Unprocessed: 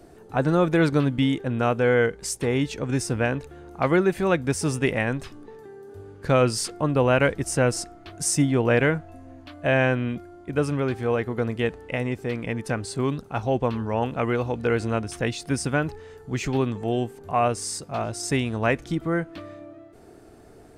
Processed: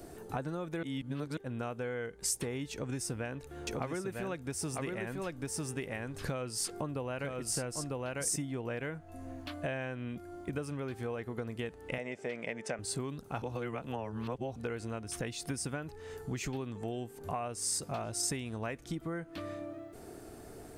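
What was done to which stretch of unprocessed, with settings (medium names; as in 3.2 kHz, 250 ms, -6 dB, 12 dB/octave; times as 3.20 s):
0.83–1.37 s: reverse
2.72–8.36 s: delay 949 ms -4 dB
11.98–12.79 s: cabinet simulation 240–7600 Hz, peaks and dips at 300 Hz -8 dB, 610 Hz +8 dB, 1.1 kHz -5 dB, 2.1 kHz +5 dB, 4.2 kHz -7 dB
13.42–14.56 s: reverse
whole clip: compression 12:1, threshold -34 dBFS; treble shelf 7.8 kHz +11 dB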